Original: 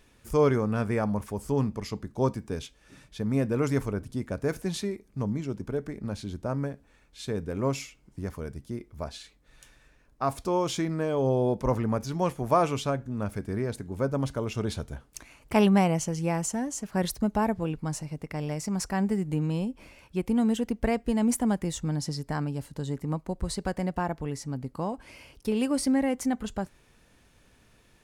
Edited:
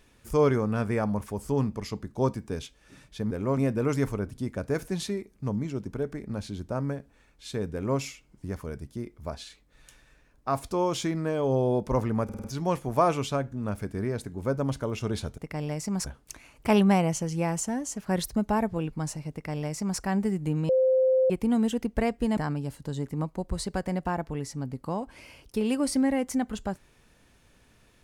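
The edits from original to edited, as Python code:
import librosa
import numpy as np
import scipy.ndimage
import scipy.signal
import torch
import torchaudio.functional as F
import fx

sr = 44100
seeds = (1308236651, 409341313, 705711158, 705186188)

y = fx.edit(x, sr, fx.duplicate(start_s=7.47, length_s=0.26, to_s=3.31),
    fx.stutter(start_s=11.98, slice_s=0.05, count=5),
    fx.duplicate(start_s=18.18, length_s=0.68, to_s=14.92),
    fx.bleep(start_s=19.55, length_s=0.61, hz=520.0, db=-18.5),
    fx.cut(start_s=21.23, length_s=1.05), tone=tone)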